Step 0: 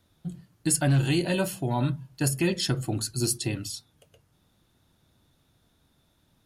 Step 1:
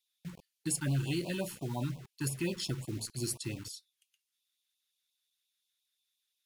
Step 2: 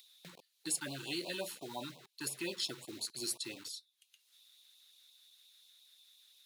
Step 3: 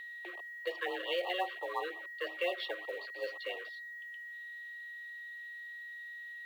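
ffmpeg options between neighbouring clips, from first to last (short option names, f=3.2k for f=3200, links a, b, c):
-filter_complex "[0:a]acrossover=split=2000[a][b];[a]acrusher=bits=6:mix=0:aa=0.000001[c];[c][b]amix=inputs=2:normalize=0,afftfilt=real='re*(1-between(b*sr/1024,560*pow(1700/560,0.5+0.5*sin(2*PI*5.7*pts/sr))/1.41,560*pow(1700/560,0.5+0.5*sin(2*PI*5.7*pts/sr))*1.41))':imag='im*(1-between(b*sr/1024,560*pow(1700/560,0.5+0.5*sin(2*PI*5.7*pts/sr))/1.41,560*pow(1700/560,0.5+0.5*sin(2*PI*5.7*pts/sr))*1.41))':win_size=1024:overlap=0.75,volume=-9dB"
-af "highpass=390,equalizer=f=3.9k:w=4.2:g=9,acompressor=mode=upward:threshold=-47dB:ratio=2.5,volume=-1.5dB"
-af "highpass=f=160:t=q:w=0.5412,highpass=f=160:t=q:w=1.307,lowpass=f=3k:t=q:w=0.5176,lowpass=f=3k:t=q:w=0.7071,lowpass=f=3k:t=q:w=1.932,afreqshift=180,aeval=exprs='val(0)+0.00316*sin(2*PI*1900*n/s)':c=same,acrusher=bits=7:mode=log:mix=0:aa=0.000001,volume=6.5dB"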